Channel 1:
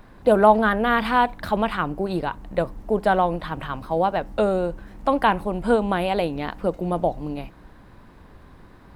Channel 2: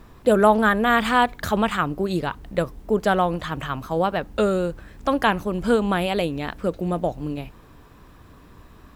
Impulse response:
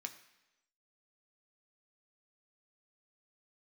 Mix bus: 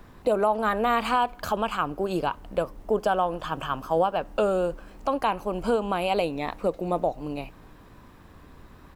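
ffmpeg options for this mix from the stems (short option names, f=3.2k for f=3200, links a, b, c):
-filter_complex "[0:a]volume=-5dB,asplit=2[a][b];[b]volume=-14.5dB[c];[1:a]volume=-1,adelay=0.5,volume=-5dB,asplit=2[d][e];[e]volume=-14dB[f];[2:a]atrim=start_sample=2205[g];[c][f]amix=inputs=2:normalize=0[h];[h][g]afir=irnorm=-1:irlink=0[i];[a][d][i]amix=inputs=3:normalize=0,alimiter=limit=-13dB:level=0:latency=1:release=335"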